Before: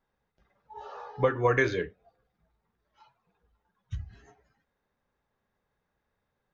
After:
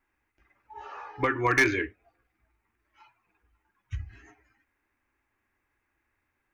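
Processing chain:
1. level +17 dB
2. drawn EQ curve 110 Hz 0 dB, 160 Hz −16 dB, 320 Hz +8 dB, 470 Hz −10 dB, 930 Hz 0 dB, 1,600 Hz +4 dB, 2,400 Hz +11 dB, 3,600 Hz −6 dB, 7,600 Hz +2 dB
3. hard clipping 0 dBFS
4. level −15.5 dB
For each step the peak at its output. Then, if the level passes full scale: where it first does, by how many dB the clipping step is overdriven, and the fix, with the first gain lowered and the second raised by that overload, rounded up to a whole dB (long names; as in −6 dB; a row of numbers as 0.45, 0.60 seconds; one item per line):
+4.5, +9.0, 0.0, −15.5 dBFS
step 1, 9.0 dB
step 1 +8 dB, step 4 −6.5 dB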